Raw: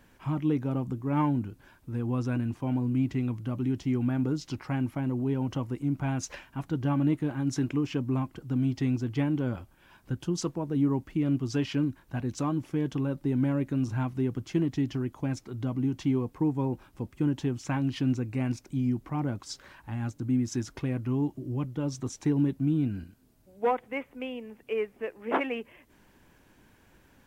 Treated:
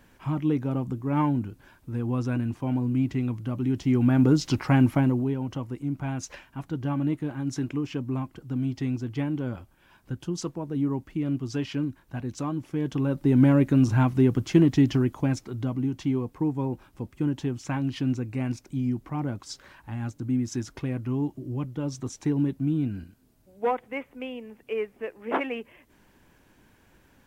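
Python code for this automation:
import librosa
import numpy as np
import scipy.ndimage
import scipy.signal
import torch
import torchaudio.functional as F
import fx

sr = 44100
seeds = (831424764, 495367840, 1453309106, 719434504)

y = fx.gain(x, sr, db=fx.line((3.61, 2.0), (4.36, 10.0), (4.98, 10.0), (5.38, -1.0), (12.66, -1.0), (13.42, 8.5), (14.95, 8.5), (15.89, 0.5)))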